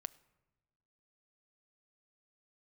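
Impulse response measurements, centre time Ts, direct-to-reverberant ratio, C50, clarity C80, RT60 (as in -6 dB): 2 ms, 17.5 dB, 21.0 dB, 22.5 dB, no single decay rate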